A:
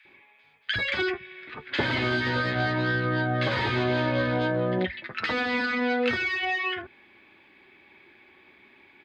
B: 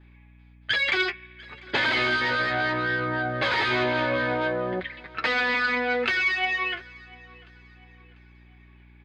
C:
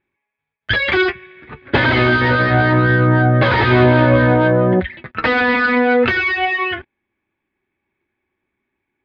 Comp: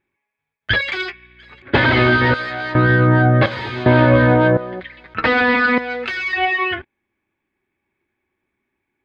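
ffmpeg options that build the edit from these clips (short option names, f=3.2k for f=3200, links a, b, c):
-filter_complex "[1:a]asplit=4[a][b][c][d];[2:a]asplit=6[e][f][g][h][i][j];[e]atrim=end=0.812[k];[a]atrim=start=0.808:end=1.622[l];[f]atrim=start=1.618:end=2.342[m];[b]atrim=start=2.338:end=2.752[n];[g]atrim=start=2.748:end=3.462[o];[0:a]atrim=start=3.458:end=3.862[p];[h]atrim=start=3.858:end=4.572[q];[c]atrim=start=4.568:end=5.142[r];[i]atrim=start=5.138:end=5.782[s];[d]atrim=start=5.778:end=6.332[t];[j]atrim=start=6.328[u];[k][l]acrossfade=d=0.004:c1=hsin:c2=hsin[v];[v][m]acrossfade=d=0.004:c1=hsin:c2=hsin[w];[w][n]acrossfade=d=0.004:c1=hsin:c2=hsin[x];[x][o]acrossfade=d=0.004:c1=hsin:c2=hsin[y];[y][p]acrossfade=d=0.004:c1=hsin:c2=hsin[z];[z][q]acrossfade=d=0.004:c1=hsin:c2=hsin[aa];[aa][r]acrossfade=d=0.004:c1=hsin:c2=hsin[ab];[ab][s]acrossfade=d=0.004:c1=hsin:c2=hsin[ac];[ac][t]acrossfade=d=0.004:c1=hsin:c2=hsin[ad];[ad][u]acrossfade=d=0.004:c1=hsin:c2=hsin"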